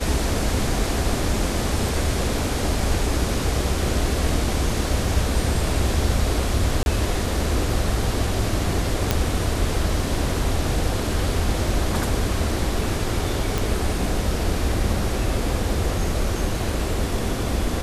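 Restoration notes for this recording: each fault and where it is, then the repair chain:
6.83–6.86 s: dropout 31 ms
9.11 s: pop -4 dBFS
13.58 s: pop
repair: de-click; interpolate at 6.83 s, 31 ms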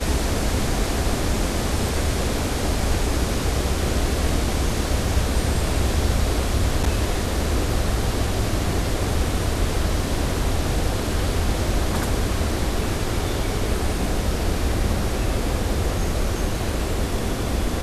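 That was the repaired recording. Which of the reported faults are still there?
nothing left

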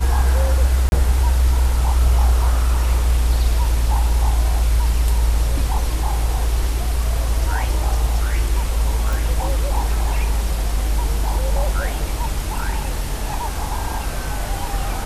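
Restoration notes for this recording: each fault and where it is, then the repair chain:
0.89–0.92 s: dropout 31 ms
9.13 s: pop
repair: de-click; interpolate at 0.89 s, 31 ms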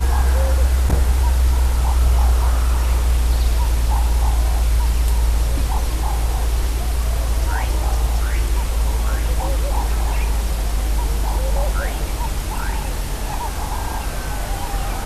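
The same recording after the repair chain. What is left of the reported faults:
nothing left

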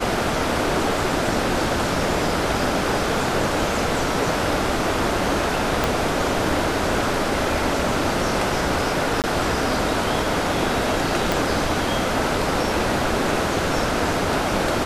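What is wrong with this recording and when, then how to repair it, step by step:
5.84 s: pop
9.22–9.24 s: dropout 18 ms
11.32 s: pop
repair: de-click; interpolate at 9.22 s, 18 ms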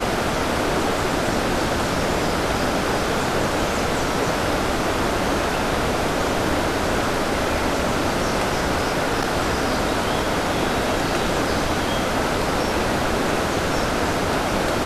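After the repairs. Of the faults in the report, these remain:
5.84 s: pop
11.32 s: pop

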